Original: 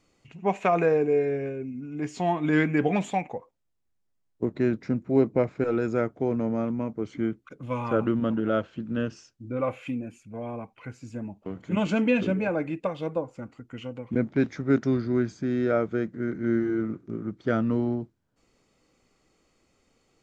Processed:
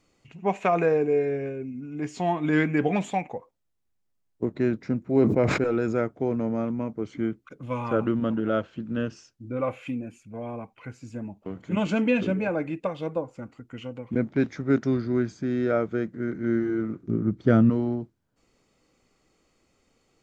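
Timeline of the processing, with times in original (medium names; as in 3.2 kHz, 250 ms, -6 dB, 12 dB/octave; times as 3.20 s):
5.17–5.97 s: decay stretcher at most 40 dB/s
17.03–17.70 s: bass shelf 340 Hz +11.5 dB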